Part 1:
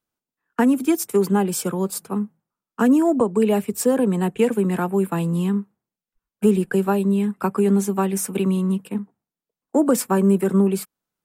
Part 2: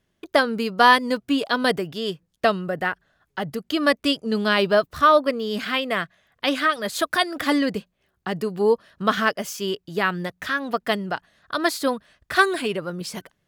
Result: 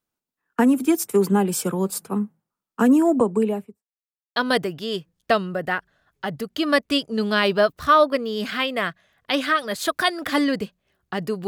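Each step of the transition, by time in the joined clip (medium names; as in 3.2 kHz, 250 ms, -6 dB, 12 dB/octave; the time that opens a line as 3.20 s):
part 1
3.22–3.84 s: studio fade out
3.84–4.36 s: mute
4.36 s: go over to part 2 from 1.50 s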